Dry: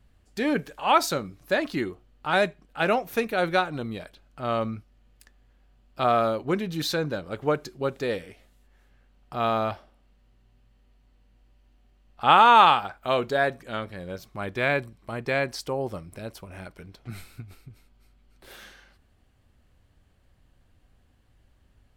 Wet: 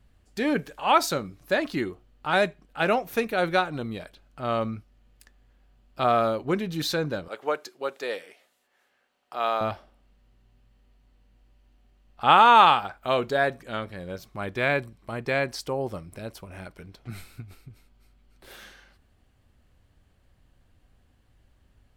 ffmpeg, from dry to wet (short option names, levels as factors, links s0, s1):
-filter_complex "[0:a]asettb=1/sr,asplit=3[s0][s1][s2];[s0]atrim=end=7.284[s3];[s1]atrim=start=7.28:end=9.61,asetpts=PTS-STARTPTS,afade=t=in:d=0.004:c=qsin,afade=t=out:st=2.326:d=0.004:c=qsin,highpass=500[s4];[s2]atrim=start=9.606[s5];[s3][s4]acrossfade=d=0.004:c1=hsin:c2=qsin[s6];[s6][s5]acrossfade=d=0.004:c1=qsin:c2=hsin"